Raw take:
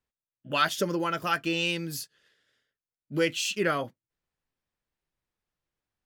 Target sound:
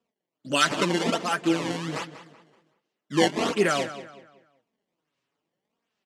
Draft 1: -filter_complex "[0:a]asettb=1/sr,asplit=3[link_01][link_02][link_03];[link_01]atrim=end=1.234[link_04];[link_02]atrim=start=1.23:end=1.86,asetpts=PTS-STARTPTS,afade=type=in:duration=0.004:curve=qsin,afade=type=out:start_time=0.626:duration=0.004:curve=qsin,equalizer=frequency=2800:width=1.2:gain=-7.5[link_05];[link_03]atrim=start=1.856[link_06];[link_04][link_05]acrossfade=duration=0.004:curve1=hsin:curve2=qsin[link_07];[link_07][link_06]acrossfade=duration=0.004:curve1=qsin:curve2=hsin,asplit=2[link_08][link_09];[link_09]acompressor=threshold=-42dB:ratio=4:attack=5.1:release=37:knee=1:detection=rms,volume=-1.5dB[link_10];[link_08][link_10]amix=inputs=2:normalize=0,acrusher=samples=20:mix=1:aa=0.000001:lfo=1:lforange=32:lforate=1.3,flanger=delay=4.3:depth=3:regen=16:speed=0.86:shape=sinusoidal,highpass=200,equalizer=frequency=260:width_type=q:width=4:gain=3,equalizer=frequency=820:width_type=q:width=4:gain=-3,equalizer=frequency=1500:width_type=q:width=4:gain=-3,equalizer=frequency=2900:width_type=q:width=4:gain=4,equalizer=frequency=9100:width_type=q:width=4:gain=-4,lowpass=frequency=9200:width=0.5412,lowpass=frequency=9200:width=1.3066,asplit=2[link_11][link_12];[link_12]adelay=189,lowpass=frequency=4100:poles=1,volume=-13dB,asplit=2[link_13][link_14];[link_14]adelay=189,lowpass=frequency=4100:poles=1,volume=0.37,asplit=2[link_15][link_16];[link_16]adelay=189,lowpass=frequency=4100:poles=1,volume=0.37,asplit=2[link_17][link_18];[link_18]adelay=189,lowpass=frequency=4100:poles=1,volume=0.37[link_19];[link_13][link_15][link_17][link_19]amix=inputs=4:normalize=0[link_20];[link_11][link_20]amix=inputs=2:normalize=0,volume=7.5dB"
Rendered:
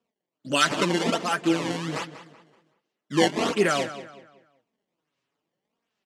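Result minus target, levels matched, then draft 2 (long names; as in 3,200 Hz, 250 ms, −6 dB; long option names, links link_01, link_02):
downward compressor: peak gain reduction −5 dB
-filter_complex "[0:a]asettb=1/sr,asplit=3[link_01][link_02][link_03];[link_01]atrim=end=1.234[link_04];[link_02]atrim=start=1.23:end=1.86,asetpts=PTS-STARTPTS,afade=type=in:duration=0.004:curve=qsin,afade=type=out:start_time=0.626:duration=0.004:curve=qsin,equalizer=frequency=2800:width=1.2:gain=-7.5[link_05];[link_03]atrim=start=1.856[link_06];[link_04][link_05]acrossfade=duration=0.004:curve1=hsin:curve2=qsin[link_07];[link_07][link_06]acrossfade=duration=0.004:curve1=qsin:curve2=hsin,asplit=2[link_08][link_09];[link_09]acompressor=threshold=-49dB:ratio=4:attack=5.1:release=37:knee=1:detection=rms,volume=-1.5dB[link_10];[link_08][link_10]amix=inputs=2:normalize=0,acrusher=samples=20:mix=1:aa=0.000001:lfo=1:lforange=32:lforate=1.3,flanger=delay=4.3:depth=3:regen=16:speed=0.86:shape=sinusoidal,highpass=200,equalizer=frequency=260:width_type=q:width=4:gain=3,equalizer=frequency=820:width_type=q:width=4:gain=-3,equalizer=frequency=1500:width_type=q:width=4:gain=-3,equalizer=frequency=2900:width_type=q:width=4:gain=4,equalizer=frequency=9100:width_type=q:width=4:gain=-4,lowpass=frequency=9200:width=0.5412,lowpass=frequency=9200:width=1.3066,asplit=2[link_11][link_12];[link_12]adelay=189,lowpass=frequency=4100:poles=1,volume=-13dB,asplit=2[link_13][link_14];[link_14]adelay=189,lowpass=frequency=4100:poles=1,volume=0.37,asplit=2[link_15][link_16];[link_16]adelay=189,lowpass=frequency=4100:poles=1,volume=0.37,asplit=2[link_17][link_18];[link_18]adelay=189,lowpass=frequency=4100:poles=1,volume=0.37[link_19];[link_13][link_15][link_17][link_19]amix=inputs=4:normalize=0[link_20];[link_11][link_20]amix=inputs=2:normalize=0,volume=7.5dB"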